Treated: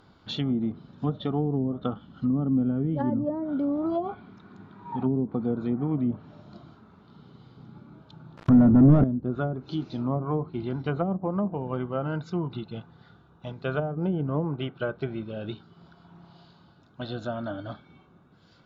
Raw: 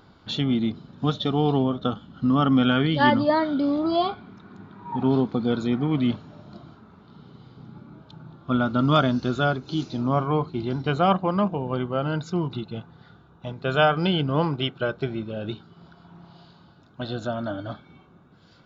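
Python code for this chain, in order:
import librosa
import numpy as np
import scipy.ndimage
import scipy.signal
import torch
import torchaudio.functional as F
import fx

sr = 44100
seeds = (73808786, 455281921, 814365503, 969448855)

y = fx.leveller(x, sr, passes=5, at=(8.37, 9.04))
y = fx.env_lowpass_down(y, sr, base_hz=380.0, full_db=-16.5)
y = y * librosa.db_to_amplitude(-3.5)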